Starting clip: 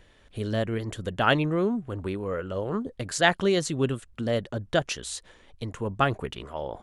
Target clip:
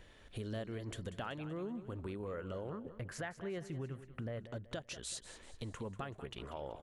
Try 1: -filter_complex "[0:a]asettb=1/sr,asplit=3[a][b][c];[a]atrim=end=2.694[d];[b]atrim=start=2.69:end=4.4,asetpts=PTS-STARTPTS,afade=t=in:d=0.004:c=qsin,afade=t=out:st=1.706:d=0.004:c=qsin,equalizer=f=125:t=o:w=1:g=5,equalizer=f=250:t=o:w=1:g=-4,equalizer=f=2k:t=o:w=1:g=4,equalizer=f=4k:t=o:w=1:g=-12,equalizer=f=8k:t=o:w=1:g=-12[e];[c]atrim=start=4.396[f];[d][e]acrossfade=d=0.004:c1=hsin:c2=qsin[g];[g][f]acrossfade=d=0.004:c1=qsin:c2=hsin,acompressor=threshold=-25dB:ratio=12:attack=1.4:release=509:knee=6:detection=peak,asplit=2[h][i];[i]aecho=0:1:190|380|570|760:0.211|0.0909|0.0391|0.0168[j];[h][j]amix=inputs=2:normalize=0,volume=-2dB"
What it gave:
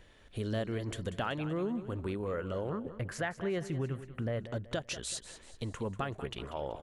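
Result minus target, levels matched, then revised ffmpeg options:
compressor: peak gain reduction -8 dB
-filter_complex "[0:a]asettb=1/sr,asplit=3[a][b][c];[a]atrim=end=2.694[d];[b]atrim=start=2.69:end=4.4,asetpts=PTS-STARTPTS,afade=t=in:d=0.004:c=qsin,afade=t=out:st=1.706:d=0.004:c=qsin,equalizer=f=125:t=o:w=1:g=5,equalizer=f=250:t=o:w=1:g=-4,equalizer=f=2k:t=o:w=1:g=4,equalizer=f=4k:t=o:w=1:g=-12,equalizer=f=8k:t=o:w=1:g=-12[e];[c]atrim=start=4.396[f];[d][e]acrossfade=d=0.004:c1=hsin:c2=qsin[g];[g][f]acrossfade=d=0.004:c1=qsin:c2=hsin,acompressor=threshold=-33.5dB:ratio=12:attack=1.4:release=509:knee=6:detection=peak,asplit=2[h][i];[i]aecho=0:1:190|380|570|760:0.211|0.0909|0.0391|0.0168[j];[h][j]amix=inputs=2:normalize=0,volume=-2dB"

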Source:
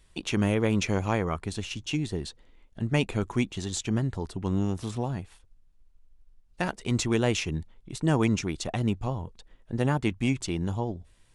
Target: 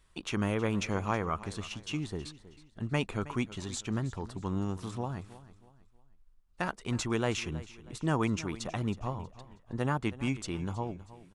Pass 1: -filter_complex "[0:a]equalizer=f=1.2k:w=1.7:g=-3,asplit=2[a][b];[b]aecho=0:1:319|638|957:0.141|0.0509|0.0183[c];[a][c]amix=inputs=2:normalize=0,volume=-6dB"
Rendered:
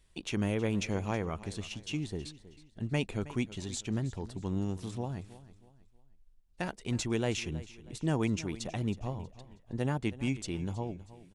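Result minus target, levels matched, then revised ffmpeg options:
1000 Hz band -5.0 dB
-filter_complex "[0:a]equalizer=f=1.2k:w=1.7:g=7.5,asplit=2[a][b];[b]aecho=0:1:319|638|957:0.141|0.0509|0.0183[c];[a][c]amix=inputs=2:normalize=0,volume=-6dB"

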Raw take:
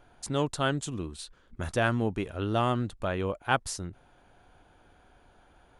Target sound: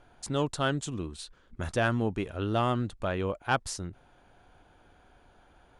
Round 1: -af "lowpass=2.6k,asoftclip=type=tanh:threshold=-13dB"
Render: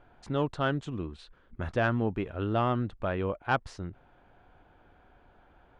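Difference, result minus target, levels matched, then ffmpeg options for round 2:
8000 Hz band -17.5 dB
-af "lowpass=10k,asoftclip=type=tanh:threshold=-13dB"

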